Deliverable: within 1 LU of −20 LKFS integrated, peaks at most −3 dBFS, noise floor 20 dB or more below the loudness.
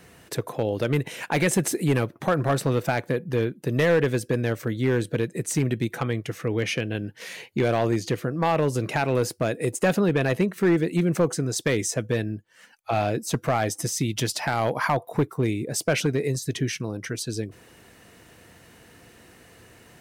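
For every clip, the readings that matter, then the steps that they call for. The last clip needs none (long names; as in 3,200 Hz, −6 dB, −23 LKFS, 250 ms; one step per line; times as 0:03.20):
share of clipped samples 0.8%; peaks flattened at −14.5 dBFS; integrated loudness −25.5 LKFS; sample peak −14.5 dBFS; target loudness −20.0 LKFS
→ clipped peaks rebuilt −14.5 dBFS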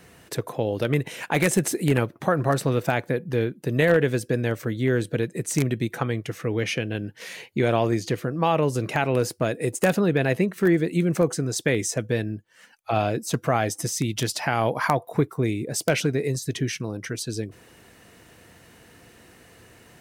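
share of clipped samples 0.0%; integrated loudness −24.5 LKFS; sample peak −5.5 dBFS; target loudness −20.0 LKFS
→ level +4.5 dB
brickwall limiter −3 dBFS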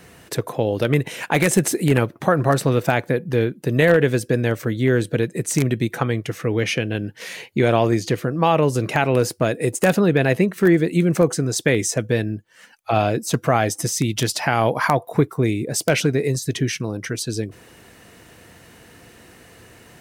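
integrated loudness −20.5 LKFS; sample peak −3.0 dBFS; background noise floor −49 dBFS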